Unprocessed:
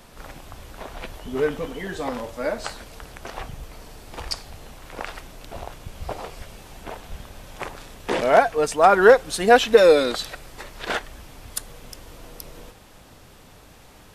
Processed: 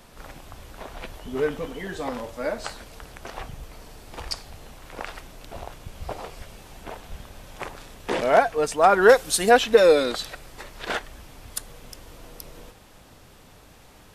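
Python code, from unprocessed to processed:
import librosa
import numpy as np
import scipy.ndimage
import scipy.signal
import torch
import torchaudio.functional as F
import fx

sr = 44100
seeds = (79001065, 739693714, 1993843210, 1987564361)

y = fx.high_shelf(x, sr, hz=fx.line((9.08, 3300.0), (9.49, 5000.0)), db=11.0, at=(9.08, 9.49), fade=0.02)
y = y * librosa.db_to_amplitude(-2.0)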